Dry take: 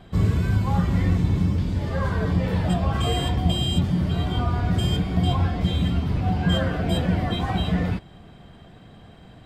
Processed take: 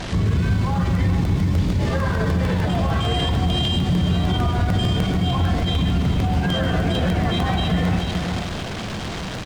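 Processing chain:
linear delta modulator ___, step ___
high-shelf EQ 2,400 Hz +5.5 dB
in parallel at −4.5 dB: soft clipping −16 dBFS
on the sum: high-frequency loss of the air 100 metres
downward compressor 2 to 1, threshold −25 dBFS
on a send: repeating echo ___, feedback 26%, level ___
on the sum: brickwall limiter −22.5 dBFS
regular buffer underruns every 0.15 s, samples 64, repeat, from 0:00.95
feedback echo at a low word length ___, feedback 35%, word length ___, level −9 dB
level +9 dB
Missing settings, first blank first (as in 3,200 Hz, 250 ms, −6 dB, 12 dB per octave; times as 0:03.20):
64 kbit/s, −36.5 dBFS, 431 ms, −10.5 dB, 135 ms, 9 bits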